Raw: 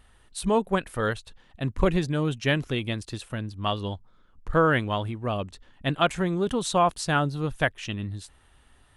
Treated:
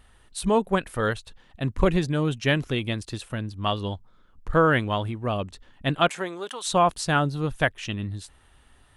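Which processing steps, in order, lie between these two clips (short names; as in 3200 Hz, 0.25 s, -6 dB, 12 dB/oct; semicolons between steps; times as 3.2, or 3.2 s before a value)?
6.07–6.65 HPF 290 Hz -> 1100 Hz 12 dB/oct; gain +1.5 dB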